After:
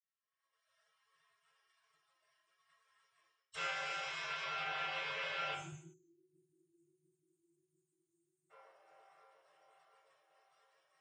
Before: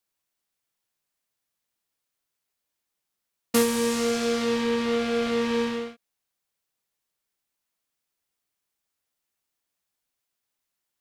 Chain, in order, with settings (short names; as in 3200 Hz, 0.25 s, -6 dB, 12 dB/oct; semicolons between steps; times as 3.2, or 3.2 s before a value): chord vocoder major triad, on G3; recorder AGC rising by 42 dB/s; spectral gate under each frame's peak -30 dB weak; band-limited delay 0.698 s, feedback 61%, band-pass 550 Hz, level -16 dB; spectral delete 5.53–8.51, 370–6100 Hz; reverse; compressor, threshold -55 dBFS, peak gain reduction 13 dB; reverse; limiter -52.5 dBFS, peak gain reduction 8.5 dB; reverb removal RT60 0.86 s; reverb RT60 0.60 s, pre-delay 3 ms, DRR -6.5 dB; gain +9.5 dB